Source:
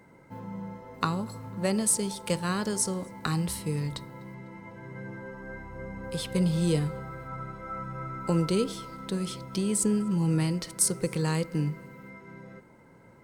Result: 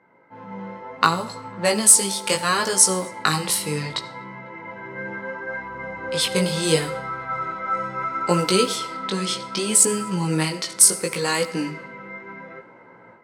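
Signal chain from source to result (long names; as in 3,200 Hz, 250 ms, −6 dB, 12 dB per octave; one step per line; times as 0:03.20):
high-pass filter 890 Hz 6 dB per octave
low-pass that shuts in the quiet parts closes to 1,700 Hz, open at −32.5 dBFS
automatic gain control gain up to 11 dB
chorus effect 0.7 Hz, delay 16 ms, depth 4.9 ms
hard clipping −8.5 dBFS, distortion −34 dB
convolution reverb RT60 0.45 s, pre-delay 35 ms, DRR 17 dB
level +7 dB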